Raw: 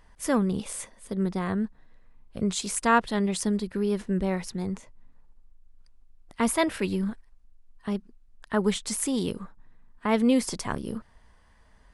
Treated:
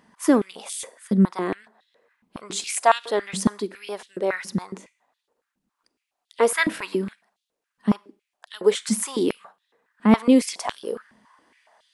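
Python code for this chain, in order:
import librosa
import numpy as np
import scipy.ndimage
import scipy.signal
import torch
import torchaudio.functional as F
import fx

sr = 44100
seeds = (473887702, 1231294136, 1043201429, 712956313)

y = fx.rev_schroeder(x, sr, rt60_s=0.44, comb_ms=32, drr_db=19.5)
y = fx.filter_held_highpass(y, sr, hz=7.2, low_hz=210.0, high_hz=3500.0)
y = y * librosa.db_to_amplitude(2.0)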